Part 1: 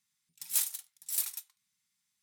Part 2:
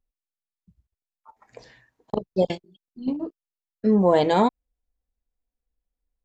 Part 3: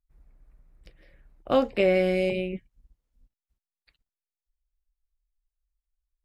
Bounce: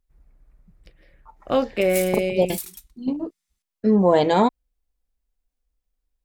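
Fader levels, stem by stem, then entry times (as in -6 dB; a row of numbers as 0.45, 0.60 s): -1.5, +1.5, +1.5 dB; 1.40, 0.00, 0.00 s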